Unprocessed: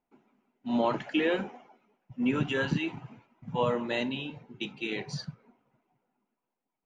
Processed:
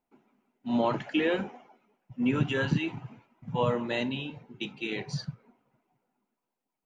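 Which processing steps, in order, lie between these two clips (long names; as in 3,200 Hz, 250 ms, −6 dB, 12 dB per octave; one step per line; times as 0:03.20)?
dynamic equaliser 110 Hz, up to +6 dB, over −46 dBFS, Q 1.4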